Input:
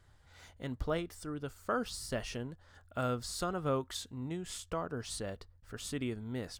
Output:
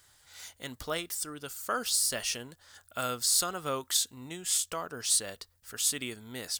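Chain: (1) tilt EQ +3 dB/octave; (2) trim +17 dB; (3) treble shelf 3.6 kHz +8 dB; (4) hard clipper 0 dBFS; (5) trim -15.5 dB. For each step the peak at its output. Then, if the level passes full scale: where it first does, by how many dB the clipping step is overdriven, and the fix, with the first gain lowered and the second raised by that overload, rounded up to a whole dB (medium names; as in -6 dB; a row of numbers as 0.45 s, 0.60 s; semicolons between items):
-20.0 dBFS, -3.0 dBFS, +4.0 dBFS, 0.0 dBFS, -15.5 dBFS; step 3, 4.0 dB; step 2 +13 dB, step 5 -11.5 dB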